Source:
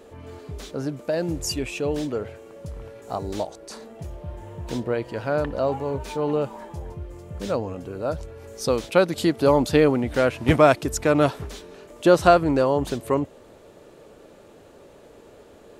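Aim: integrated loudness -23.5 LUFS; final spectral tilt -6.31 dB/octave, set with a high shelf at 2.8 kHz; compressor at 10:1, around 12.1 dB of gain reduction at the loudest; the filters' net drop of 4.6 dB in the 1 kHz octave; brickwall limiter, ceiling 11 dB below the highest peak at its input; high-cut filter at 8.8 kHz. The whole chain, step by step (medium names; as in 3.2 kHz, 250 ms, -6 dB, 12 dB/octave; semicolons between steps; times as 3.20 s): low-pass 8.8 kHz; peaking EQ 1 kHz -6 dB; treble shelf 2.8 kHz -9 dB; compression 10:1, threshold -25 dBFS; trim +13 dB; peak limiter -13 dBFS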